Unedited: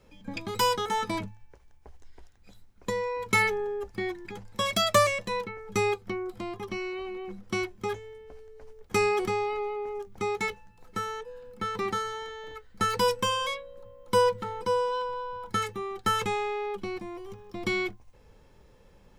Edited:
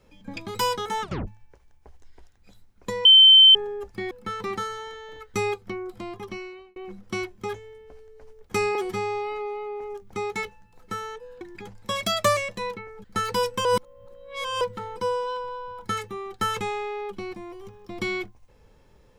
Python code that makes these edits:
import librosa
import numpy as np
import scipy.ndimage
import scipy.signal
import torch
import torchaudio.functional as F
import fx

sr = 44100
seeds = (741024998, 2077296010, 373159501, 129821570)

y = fx.edit(x, sr, fx.tape_stop(start_s=1.02, length_s=0.25),
    fx.bleep(start_s=3.05, length_s=0.5, hz=3090.0, db=-8.5),
    fx.swap(start_s=4.11, length_s=1.63, other_s=11.46, other_length_s=1.23),
    fx.fade_out_span(start_s=6.67, length_s=0.49),
    fx.stretch_span(start_s=9.15, length_s=0.7, factor=1.5),
    fx.reverse_span(start_s=13.3, length_s=0.96), tone=tone)